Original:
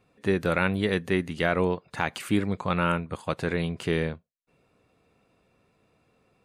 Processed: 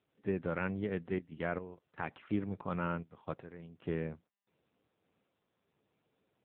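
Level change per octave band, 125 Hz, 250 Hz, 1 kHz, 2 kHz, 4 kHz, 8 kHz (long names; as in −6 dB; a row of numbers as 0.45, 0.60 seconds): −11.0 dB, −10.0 dB, −12.0 dB, −14.0 dB, −22.5 dB, below −30 dB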